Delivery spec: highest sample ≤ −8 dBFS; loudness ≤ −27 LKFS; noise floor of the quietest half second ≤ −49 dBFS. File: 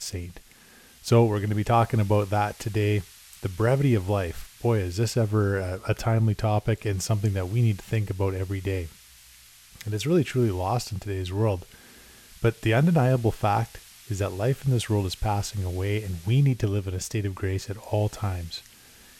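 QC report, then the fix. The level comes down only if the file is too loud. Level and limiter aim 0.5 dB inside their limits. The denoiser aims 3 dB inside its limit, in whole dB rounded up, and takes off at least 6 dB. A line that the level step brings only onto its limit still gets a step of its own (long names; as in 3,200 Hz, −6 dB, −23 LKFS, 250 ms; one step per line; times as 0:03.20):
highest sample −9.0 dBFS: in spec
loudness −26.0 LKFS: out of spec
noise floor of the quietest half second −53 dBFS: in spec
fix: level −1.5 dB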